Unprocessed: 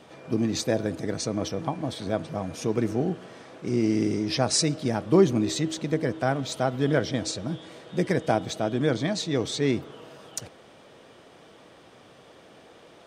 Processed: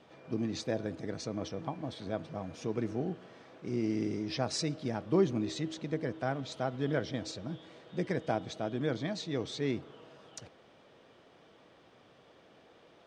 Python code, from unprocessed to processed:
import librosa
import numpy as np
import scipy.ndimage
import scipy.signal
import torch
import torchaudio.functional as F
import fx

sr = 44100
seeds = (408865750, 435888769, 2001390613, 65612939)

y = scipy.signal.sosfilt(scipy.signal.butter(2, 5500.0, 'lowpass', fs=sr, output='sos'), x)
y = y * librosa.db_to_amplitude(-8.5)